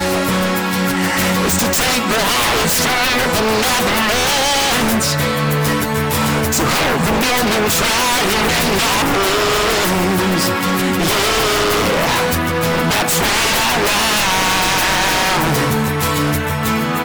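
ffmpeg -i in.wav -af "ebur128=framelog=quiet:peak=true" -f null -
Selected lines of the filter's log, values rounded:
Integrated loudness:
  I:         -14.5 LUFS
  Threshold: -24.5 LUFS
Loudness range:
  LRA:         1.1 LU
  Threshold: -34.3 LUFS
  LRA low:   -14.9 LUFS
  LRA high:  -13.8 LUFS
True peak:
  Peak:       -5.6 dBFS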